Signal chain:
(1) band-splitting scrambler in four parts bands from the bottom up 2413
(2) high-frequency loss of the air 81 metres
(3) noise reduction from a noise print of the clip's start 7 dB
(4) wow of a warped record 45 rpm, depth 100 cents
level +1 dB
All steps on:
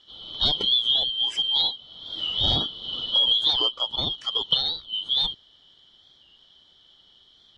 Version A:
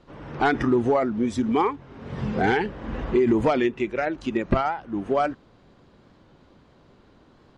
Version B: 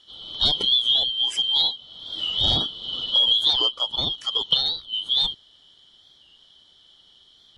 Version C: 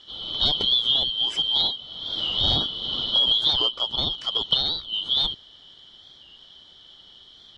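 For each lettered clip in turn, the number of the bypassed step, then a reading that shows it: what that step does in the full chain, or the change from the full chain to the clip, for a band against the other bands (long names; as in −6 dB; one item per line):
1, change in crest factor −5.0 dB
2, 4 kHz band +1.5 dB
3, change in momentary loudness spread −3 LU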